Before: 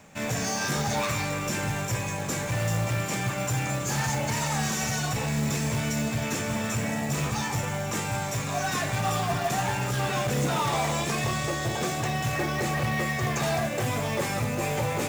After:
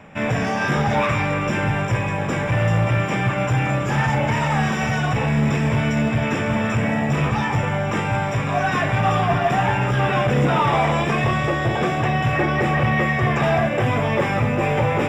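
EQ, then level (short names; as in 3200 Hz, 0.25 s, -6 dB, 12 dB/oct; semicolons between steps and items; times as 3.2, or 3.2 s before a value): polynomial smoothing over 25 samples; +8.5 dB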